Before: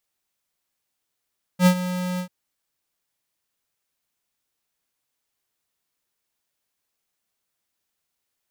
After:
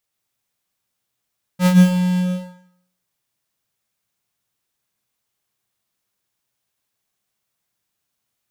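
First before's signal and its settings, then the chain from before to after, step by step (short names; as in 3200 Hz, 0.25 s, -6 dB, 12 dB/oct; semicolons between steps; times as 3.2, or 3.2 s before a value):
ADSR square 181 Hz, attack 72 ms, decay 79 ms, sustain -14 dB, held 0.60 s, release 91 ms -12.5 dBFS
tracing distortion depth 0.064 ms; bell 120 Hz +11.5 dB 0.35 oct; plate-style reverb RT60 0.66 s, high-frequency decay 0.85×, pre-delay 0.11 s, DRR 1.5 dB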